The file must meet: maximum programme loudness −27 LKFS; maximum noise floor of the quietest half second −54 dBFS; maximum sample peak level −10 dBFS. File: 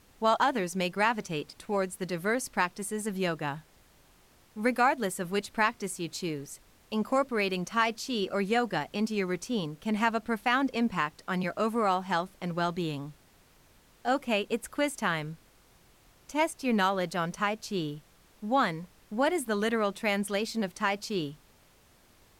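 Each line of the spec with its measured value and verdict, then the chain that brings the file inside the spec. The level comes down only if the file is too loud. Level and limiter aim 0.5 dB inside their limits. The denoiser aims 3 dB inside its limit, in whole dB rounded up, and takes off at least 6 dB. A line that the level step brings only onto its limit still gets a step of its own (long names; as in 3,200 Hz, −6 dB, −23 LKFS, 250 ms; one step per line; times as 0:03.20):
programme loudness −30.0 LKFS: in spec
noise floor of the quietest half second −61 dBFS: in spec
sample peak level −11.5 dBFS: in spec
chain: no processing needed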